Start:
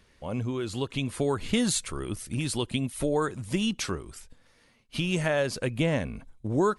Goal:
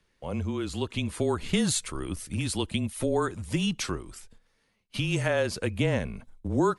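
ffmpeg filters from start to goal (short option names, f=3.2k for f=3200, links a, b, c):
-af "agate=range=-9dB:threshold=-50dB:ratio=16:detection=peak,afreqshift=-24"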